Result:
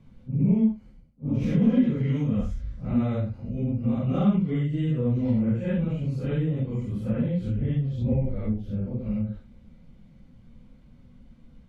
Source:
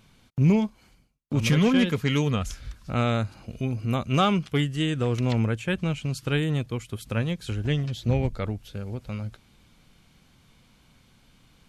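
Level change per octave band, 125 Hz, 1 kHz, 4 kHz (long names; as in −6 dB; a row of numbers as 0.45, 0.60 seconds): 0.0 dB, −11.5 dB, below −15 dB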